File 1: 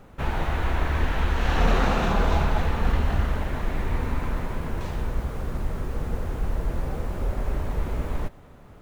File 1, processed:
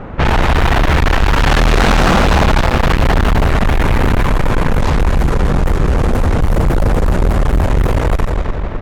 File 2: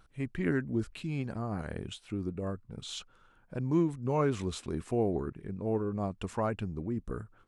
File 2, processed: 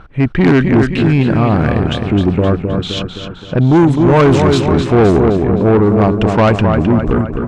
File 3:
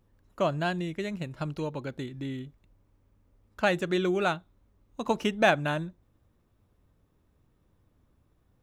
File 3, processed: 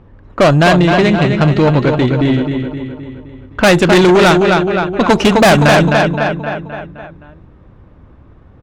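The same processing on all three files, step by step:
repeating echo 260 ms, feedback 52%, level −7 dB
low-pass that shuts in the quiet parts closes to 2,100 Hz, open at −19 dBFS
tube saturation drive 30 dB, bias 0.3
normalise the peak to −3 dBFS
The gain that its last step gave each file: +22.0, +25.0, +25.0 decibels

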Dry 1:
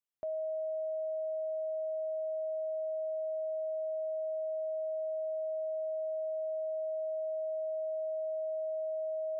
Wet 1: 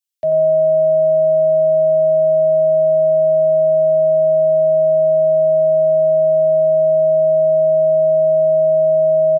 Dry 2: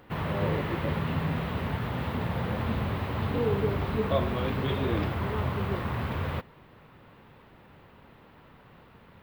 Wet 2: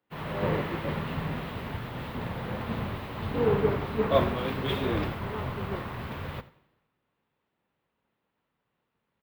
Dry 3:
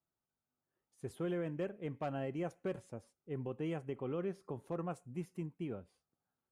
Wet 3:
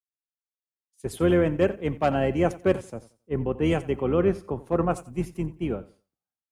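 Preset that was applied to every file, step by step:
sub-octave generator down 2 octaves, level −4 dB
high-pass filter 130 Hz 6 dB per octave
repeating echo 90 ms, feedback 36%, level −16 dB
multiband upward and downward expander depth 100%
normalise the peak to −9 dBFS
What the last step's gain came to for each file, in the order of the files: +22.0, −1.0, +16.0 decibels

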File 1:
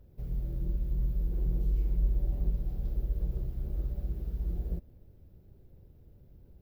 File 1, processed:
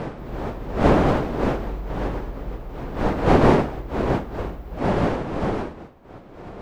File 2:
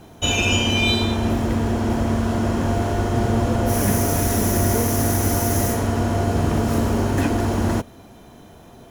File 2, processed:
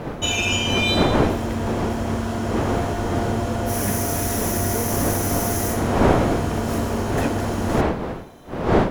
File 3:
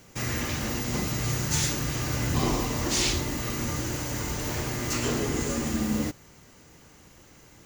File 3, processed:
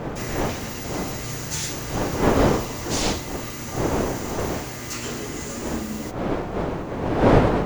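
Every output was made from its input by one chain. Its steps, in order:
wind on the microphone 480 Hz −21 dBFS
low-shelf EQ 490 Hz −4 dB
normalise the peak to −3 dBFS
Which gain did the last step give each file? +1.0, −1.0, −1.0 decibels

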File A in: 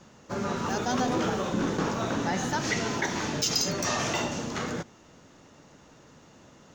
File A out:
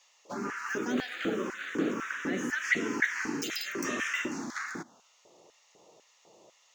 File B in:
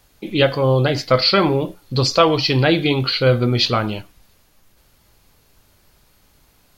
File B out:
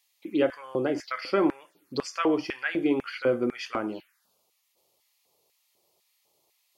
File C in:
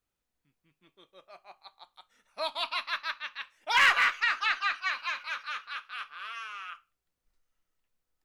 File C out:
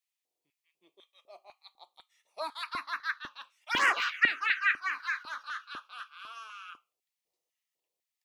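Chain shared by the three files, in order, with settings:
phaser swept by the level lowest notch 250 Hz, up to 4,000 Hz, full sweep at −17 dBFS
auto-filter high-pass square 2 Hz 300–1,700 Hz
normalise the peak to −12 dBFS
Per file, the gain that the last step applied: −2.0, −10.5, −0.5 decibels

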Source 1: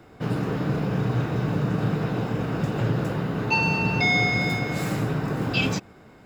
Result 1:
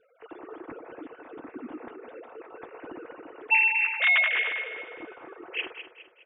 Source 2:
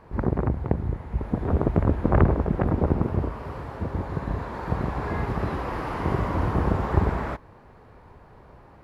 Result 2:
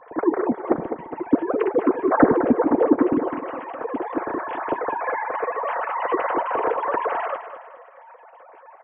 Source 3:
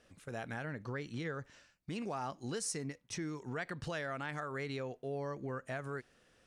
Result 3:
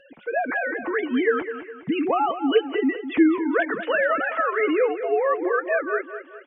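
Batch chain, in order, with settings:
three sine waves on the formant tracks
notch comb filter 200 Hz
repeating echo 206 ms, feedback 42%, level −11 dB
loudness normalisation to −23 LKFS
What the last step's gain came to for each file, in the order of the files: −5.0, +3.0, +19.0 decibels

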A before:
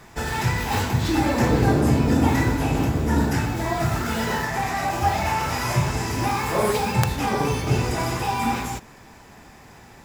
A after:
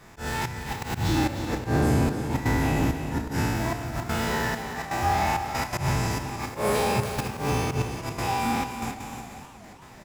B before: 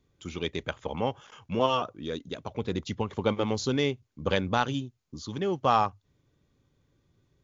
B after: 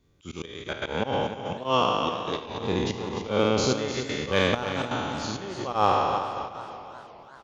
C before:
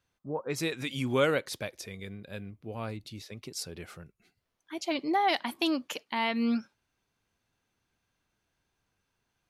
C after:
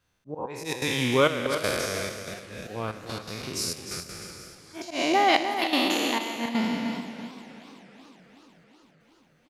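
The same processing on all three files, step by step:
peak hold with a decay on every bin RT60 2.29 s
in parallel at −4.5 dB: hard clipping −13 dBFS
on the sum: gate pattern "xxxxx..x." 165 BPM −12 dB
volume swells 114 ms
on a send: single-tap delay 304 ms −9.5 dB
on the sum: feedback echo with a swinging delay time 374 ms, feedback 68%, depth 126 cents, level −19 dB
loudness normalisation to −27 LKFS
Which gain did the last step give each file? −9.5, −2.5, −1.5 decibels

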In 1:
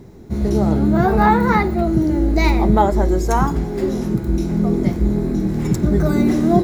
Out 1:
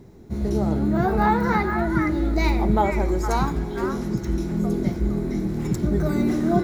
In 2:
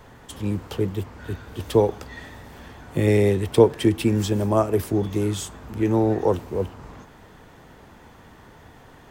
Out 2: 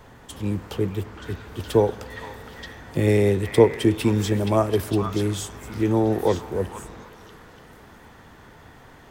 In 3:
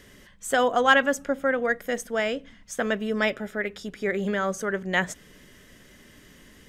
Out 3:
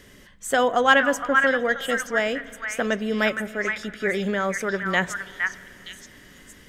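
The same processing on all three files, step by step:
echo through a band-pass that steps 464 ms, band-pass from 1,600 Hz, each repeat 1.4 octaves, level −1 dB
spring reverb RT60 3.8 s, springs 37/59 ms, chirp 25 ms, DRR 19 dB
loudness normalisation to −23 LKFS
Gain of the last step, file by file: −6.0, −0.5, +1.5 decibels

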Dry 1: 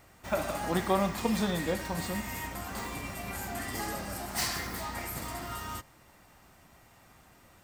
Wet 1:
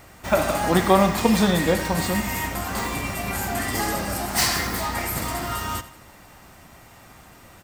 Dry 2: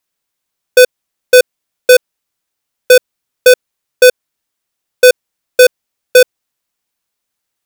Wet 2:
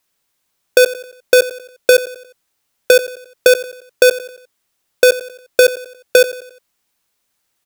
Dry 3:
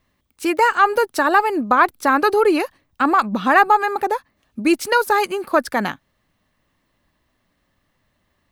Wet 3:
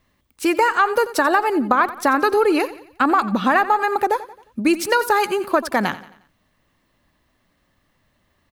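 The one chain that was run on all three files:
downward compressor 6 to 1, threshold −15 dBFS
repeating echo 89 ms, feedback 45%, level −16 dB
normalise the peak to −2 dBFS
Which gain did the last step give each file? +10.5, +5.5, +2.5 decibels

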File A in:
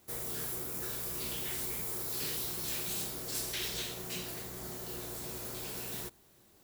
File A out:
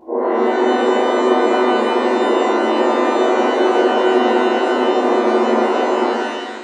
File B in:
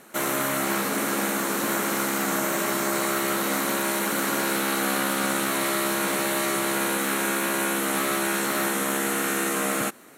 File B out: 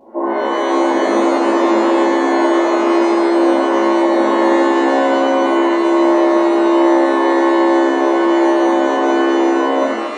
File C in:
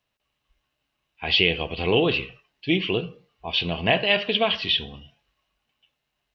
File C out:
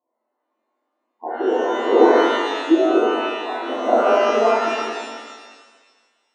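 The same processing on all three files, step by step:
brick-wall band-pass 220–1,100 Hz
reverb with rising layers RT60 1.5 s, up +12 semitones, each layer −8 dB, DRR −9.5 dB
normalise the peak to −1.5 dBFS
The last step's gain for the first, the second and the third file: +22.5, +4.5, −0.5 decibels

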